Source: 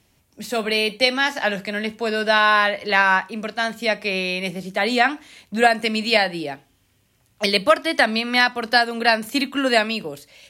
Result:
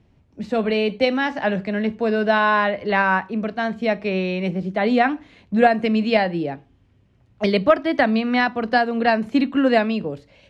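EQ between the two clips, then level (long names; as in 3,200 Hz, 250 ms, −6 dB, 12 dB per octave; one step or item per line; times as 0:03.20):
head-to-tape spacing loss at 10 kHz 26 dB
low-shelf EQ 490 Hz +8 dB
0.0 dB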